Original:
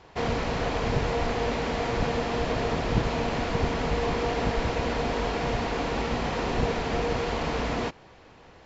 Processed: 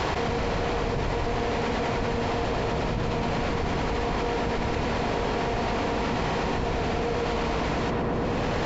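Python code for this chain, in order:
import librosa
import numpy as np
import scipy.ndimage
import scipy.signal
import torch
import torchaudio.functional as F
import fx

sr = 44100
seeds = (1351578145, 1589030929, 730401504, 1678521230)

y = fx.echo_filtered(x, sr, ms=116, feedback_pct=58, hz=1800.0, wet_db=-3.5)
y = fx.env_flatten(y, sr, amount_pct=100)
y = F.gain(torch.from_numpy(y), -8.0).numpy()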